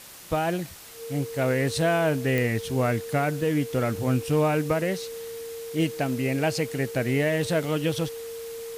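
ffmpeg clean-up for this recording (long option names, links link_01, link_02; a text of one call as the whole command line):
ffmpeg -i in.wav -af "adeclick=threshold=4,bandreject=frequency=460:width=30,afwtdn=0.0063" out.wav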